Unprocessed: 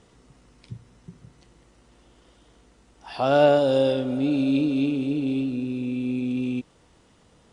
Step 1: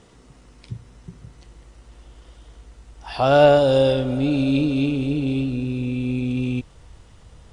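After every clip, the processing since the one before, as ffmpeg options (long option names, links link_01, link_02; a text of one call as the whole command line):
ffmpeg -i in.wav -af "asubboost=boost=6.5:cutoff=92,volume=5dB" out.wav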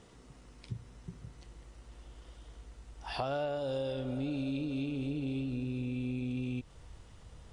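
ffmpeg -i in.wav -af "acompressor=threshold=-26dB:ratio=10,volume=-6dB" out.wav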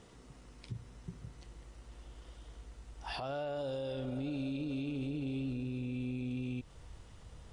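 ffmpeg -i in.wav -af "alimiter=level_in=6.5dB:limit=-24dB:level=0:latency=1:release=36,volume=-6.5dB" out.wav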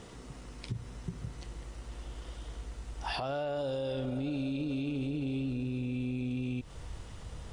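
ffmpeg -i in.wav -af "acompressor=threshold=-41dB:ratio=3,volume=8.5dB" out.wav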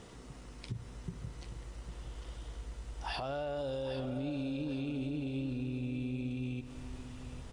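ffmpeg -i in.wav -af "aecho=1:1:802|1604|2406:0.251|0.0728|0.0211,volume=-3dB" out.wav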